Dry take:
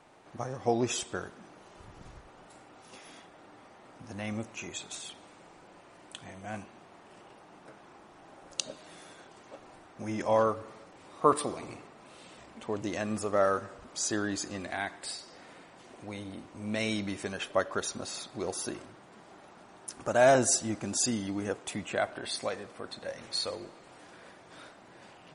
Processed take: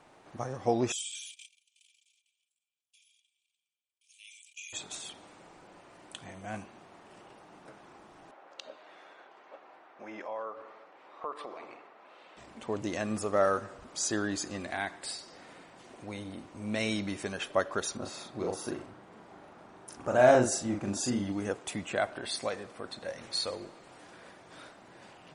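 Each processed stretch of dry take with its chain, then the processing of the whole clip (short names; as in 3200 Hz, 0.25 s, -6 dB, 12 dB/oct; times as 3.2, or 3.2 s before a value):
0.92–4.73 gate -49 dBFS, range -51 dB + rippled Chebyshev high-pass 2300 Hz, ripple 9 dB + sustainer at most 33 dB/s
8.31–12.37 BPF 500–2600 Hz + compressor 2.5:1, threshold -39 dBFS
17.97–21.32 high shelf 3100 Hz -9 dB + doubler 40 ms -4 dB
whole clip: dry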